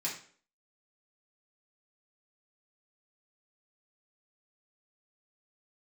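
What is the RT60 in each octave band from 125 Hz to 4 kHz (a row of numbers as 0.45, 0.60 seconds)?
0.45, 0.50, 0.50, 0.45, 0.45, 0.40 seconds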